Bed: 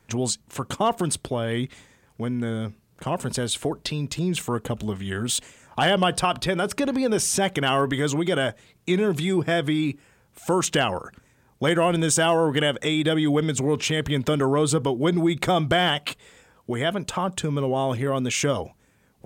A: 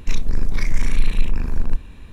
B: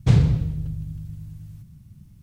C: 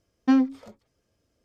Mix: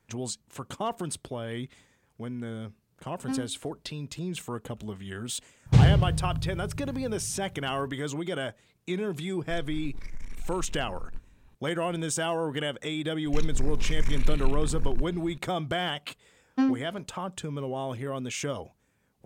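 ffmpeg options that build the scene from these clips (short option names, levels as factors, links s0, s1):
-filter_complex "[3:a]asplit=2[s0][s1];[1:a]asplit=2[s2][s3];[0:a]volume=0.355[s4];[s2]aeval=exprs='(tanh(2.24*val(0)+0.35)-tanh(0.35))/2.24':c=same[s5];[s0]atrim=end=1.44,asetpts=PTS-STARTPTS,volume=0.224,afade=t=in:d=0.004:c=hsin,afade=t=out:st=1.436:d=0.004:c=hsin,adelay=3000[s6];[2:a]atrim=end=2.22,asetpts=PTS-STARTPTS,volume=0.841,afade=t=in:d=0.004:c=hsin,afade=t=out:st=2.216:d=0.004:c=hsin,adelay=5660[s7];[s5]atrim=end=2.12,asetpts=PTS-STARTPTS,volume=0.126,afade=t=in:d=0.004:c=hsin,afade=t=out:st=2.116:d=0.004:c=hsin,adelay=9430[s8];[s3]atrim=end=2.12,asetpts=PTS-STARTPTS,volume=0.398,afade=t=in:d=0.004:c=hsin,afade=t=out:st=2.116:d=0.004:c=hsin,adelay=13260[s9];[s1]atrim=end=1.44,asetpts=PTS-STARTPTS,volume=0.562,afade=t=in:d=0.004:c=hsin,afade=t=out:st=1.436:d=0.004:c=hsin,adelay=16300[s10];[s4][s6][s7][s8][s9][s10]amix=inputs=6:normalize=0"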